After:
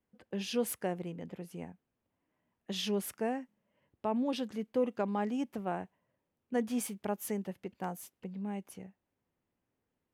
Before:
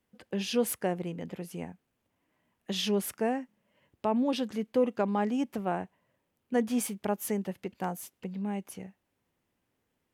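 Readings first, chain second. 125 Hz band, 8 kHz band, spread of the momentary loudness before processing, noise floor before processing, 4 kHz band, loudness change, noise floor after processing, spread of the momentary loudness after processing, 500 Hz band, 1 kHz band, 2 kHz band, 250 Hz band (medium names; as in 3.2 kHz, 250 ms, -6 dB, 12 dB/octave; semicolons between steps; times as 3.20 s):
-4.5 dB, -4.5 dB, 12 LU, -80 dBFS, -4.5 dB, -4.5 dB, -85 dBFS, 13 LU, -4.5 dB, -4.5 dB, -4.5 dB, -4.5 dB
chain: tape noise reduction on one side only decoder only; trim -4.5 dB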